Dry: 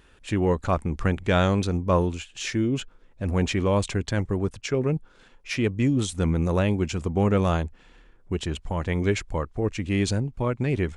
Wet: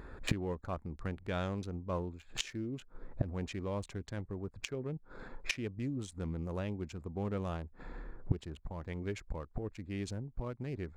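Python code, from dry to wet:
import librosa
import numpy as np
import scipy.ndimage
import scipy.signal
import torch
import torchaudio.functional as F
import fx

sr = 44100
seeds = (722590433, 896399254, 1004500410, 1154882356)

y = fx.wiener(x, sr, points=15)
y = fx.gate_flip(y, sr, shuts_db=-27.0, range_db=-24)
y = y * 10.0 ** (9.0 / 20.0)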